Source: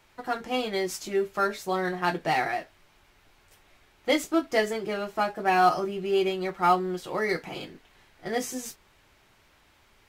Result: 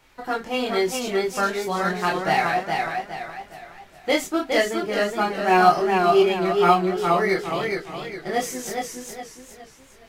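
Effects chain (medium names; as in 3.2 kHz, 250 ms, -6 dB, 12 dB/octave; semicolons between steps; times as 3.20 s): chorus voices 6, 0.24 Hz, delay 25 ms, depth 4.4 ms; modulated delay 415 ms, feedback 39%, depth 80 cents, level -4 dB; trim +7 dB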